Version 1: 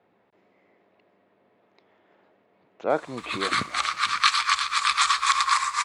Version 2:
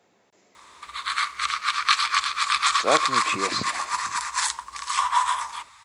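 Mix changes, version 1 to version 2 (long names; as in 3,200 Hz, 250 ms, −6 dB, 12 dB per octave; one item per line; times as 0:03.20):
speech: remove high-frequency loss of the air 410 metres
background: entry −2.35 s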